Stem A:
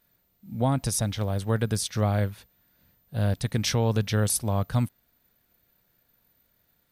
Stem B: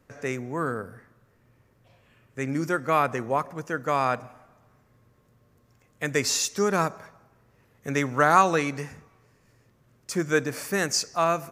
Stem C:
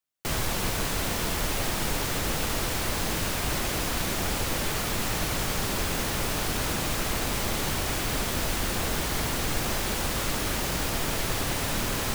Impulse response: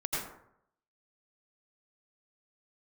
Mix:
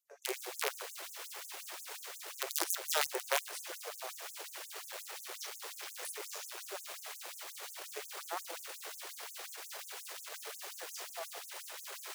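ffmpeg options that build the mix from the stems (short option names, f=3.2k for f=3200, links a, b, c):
-filter_complex "[0:a]acompressor=threshold=-26dB:ratio=6,adelay=1750,volume=-14dB[a];[1:a]firequalizer=gain_entry='entry(230,0);entry(600,3);entry(1300,-9);entry(13000,0)':delay=0.05:min_phase=1,volume=-5.5dB,afade=t=out:st=3.09:d=0.79:silence=0.223872[b];[2:a]volume=-14.5dB[c];[a][b][c]amix=inputs=3:normalize=0,aeval=exprs='0.15*(cos(1*acos(clip(val(0)/0.15,-1,1)))-cos(1*PI/2))+0.0188*(cos(6*acos(clip(val(0)/0.15,-1,1)))-cos(6*PI/2))':c=same,aeval=exprs='(mod(10*val(0)+1,2)-1)/10':c=same,afftfilt=real='re*gte(b*sr/1024,330*pow(6300/330,0.5+0.5*sin(2*PI*5.6*pts/sr)))':imag='im*gte(b*sr/1024,330*pow(6300/330,0.5+0.5*sin(2*PI*5.6*pts/sr)))':win_size=1024:overlap=0.75"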